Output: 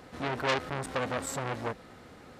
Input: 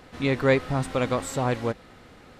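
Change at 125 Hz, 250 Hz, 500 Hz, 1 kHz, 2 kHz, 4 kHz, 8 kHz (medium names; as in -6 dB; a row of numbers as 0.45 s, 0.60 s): -11.0 dB, -11.0 dB, -9.0 dB, -3.0 dB, -4.5 dB, -1.5 dB, -1.5 dB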